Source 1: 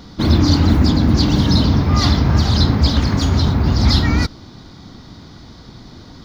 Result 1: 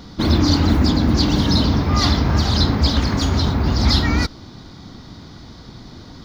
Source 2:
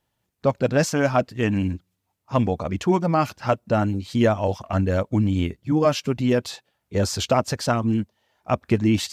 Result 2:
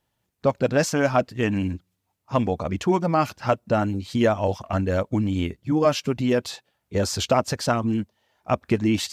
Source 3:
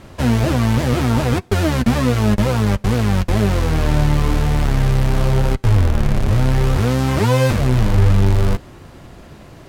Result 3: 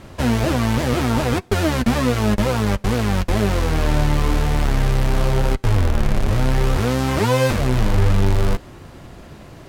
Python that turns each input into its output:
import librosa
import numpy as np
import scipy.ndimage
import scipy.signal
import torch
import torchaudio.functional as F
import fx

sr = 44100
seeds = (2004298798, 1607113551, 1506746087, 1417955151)

y = fx.dynamic_eq(x, sr, hz=120.0, q=0.85, threshold_db=-25.0, ratio=4.0, max_db=-5)